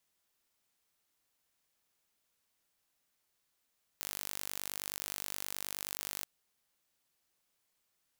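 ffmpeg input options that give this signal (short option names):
-f lavfi -i "aevalsrc='0.251*eq(mod(n,891),0)':d=2.23:s=44100"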